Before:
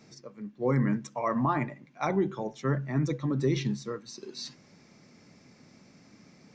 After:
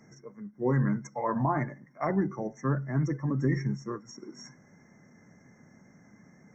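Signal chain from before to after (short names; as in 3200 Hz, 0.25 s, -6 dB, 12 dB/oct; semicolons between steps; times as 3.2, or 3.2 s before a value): FFT band-reject 2500–5500 Hz; formant shift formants -2 st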